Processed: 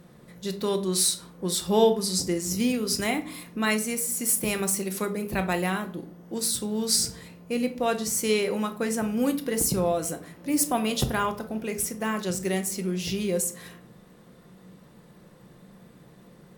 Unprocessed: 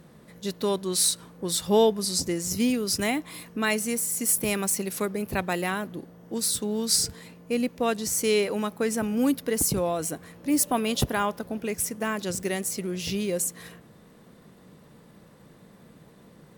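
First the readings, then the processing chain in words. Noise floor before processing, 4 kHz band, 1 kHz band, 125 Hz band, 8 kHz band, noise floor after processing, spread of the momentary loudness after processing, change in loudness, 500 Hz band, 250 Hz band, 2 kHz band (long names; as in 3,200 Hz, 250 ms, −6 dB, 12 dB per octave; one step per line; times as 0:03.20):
−53 dBFS, −0.5 dB, +0.5 dB, +1.5 dB, −0.5 dB, −53 dBFS, 9 LU, 0.0 dB, 0.0 dB, 0.0 dB, 0.0 dB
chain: rectangular room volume 400 cubic metres, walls furnished, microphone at 0.9 metres
level −1 dB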